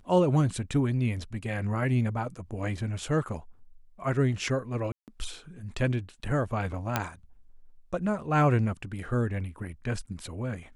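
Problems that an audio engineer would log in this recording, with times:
4.92–5.08 s: dropout 158 ms
6.96 s: pop -10 dBFS

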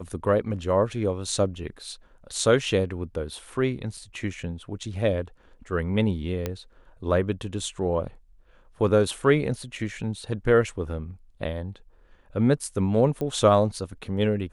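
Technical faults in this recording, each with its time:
3.97 s: dropout 3.8 ms
6.46 s: pop -14 dBFS
13.21 s: pop -19 dBFS

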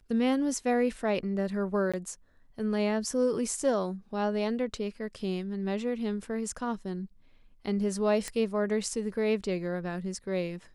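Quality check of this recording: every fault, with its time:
1.92–1.94 s: dropout 16 ms
8.28 s: pop -19 dBFS

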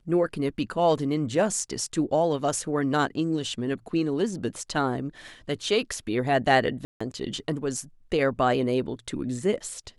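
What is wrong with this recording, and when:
6.85–7.00 s: dropout 155 ms

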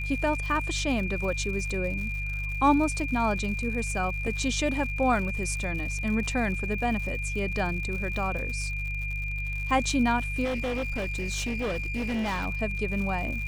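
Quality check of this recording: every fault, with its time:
crackle 110 per s -35 dBFS
hum 50 Hz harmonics 3 -33 dBFS
whine 2.4 kHz -33 dBFS
4.27 s: dropout 3.2 ms
10.44–12.47 s: clipped -26 dBFS

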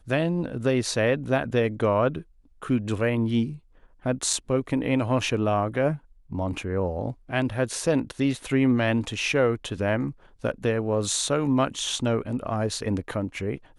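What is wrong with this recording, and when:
4.33 s: dropout 3.3 ms

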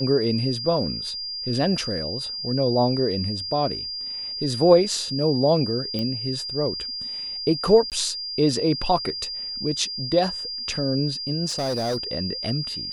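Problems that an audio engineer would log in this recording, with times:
whine 4.8 kHz -29 dBFS
5.99 s: pop -16 dBFS
7.90–7.92 s: dropout 18 ms
11.49–11.97 s: clipped -21.5 dBFS

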